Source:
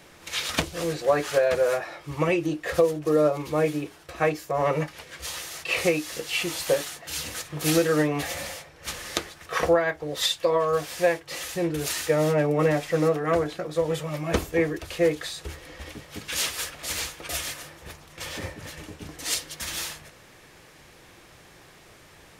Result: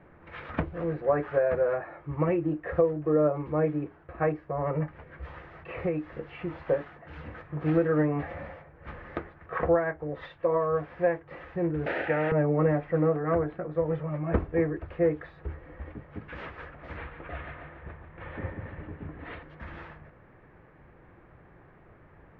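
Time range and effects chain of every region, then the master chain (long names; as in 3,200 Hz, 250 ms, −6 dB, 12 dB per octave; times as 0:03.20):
0:04.47–0:06.58: low-shelf EQ 170 Hz +5 dB + downward compressor 1.5 to 1, threshold −28 dBFS
0:11.86–0:12.32: formant filter e + parametric band 600 Hz +10.5 dB 1.1 octaves + every bin compressed towards the loudest bin 4 to 1
0:16.97–0:19.43: Butterworth low-pass 4,100 Hz 48 dB per octave + parametric band 1,900 Hz +2.5 dB 1.7 octaves + repeating echo 142 ms, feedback 57%, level −9 dB
whole clip: low-pass filter 1,800 Hz 24 dB per octave; low-shelf EQ 250 Hz +7 dB; level −4.5 dB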